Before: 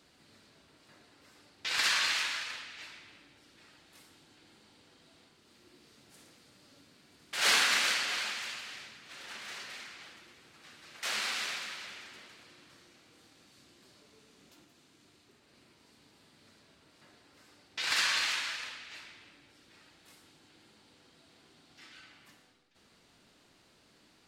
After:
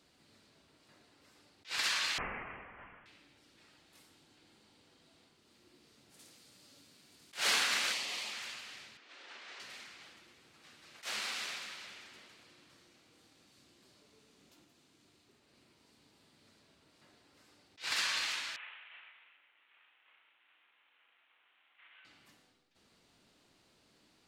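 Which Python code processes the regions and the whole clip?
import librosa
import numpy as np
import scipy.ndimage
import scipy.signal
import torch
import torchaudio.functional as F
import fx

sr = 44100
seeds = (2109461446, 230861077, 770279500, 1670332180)

y = fx.chain(x, sr, fx.highpass(hz=880.0, slope=12),
    fx.freq_invert(carrier_hz=3700), at=(2.18, 3.06))
y = fx.chain(y, sr, fx.highpass(hz=56.0, slope=12),
    fx.high_shelf(hz=3400.0, db=8.5), at=(6.19, 7.34))
y = fx.chain(y, sr, fx.highpass(hz=85.0, slope=12),
    fx.peak_eq(hz=1500.0, db=-14.5, octaves=0.34), at=(7.92, 8.33))
y = fx.chain(y, sr, fx.highpass(hz=280.0, slope=24),
    fx.clip_hard(threshold_db=-36.0),
    fx.air_absorb(metres=110.0), at=(8.97, 9.6))
y = fx.chain(y, sr, fx.cvsd(bps=16000),
    fx.highpass(hz=1300.0, slope=12),
    fx.doubler(ms=34.0, db=-7.5), at=(18.56, 22.05))
y = fx.peak_eq(y, sr, hz=1600.0, db=-2.0, octaves=0.77)
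y = fx.attack_slew(y, sr, db_per_s=290.0)
y = y * 10.0 ** (-4.0 / 20.0)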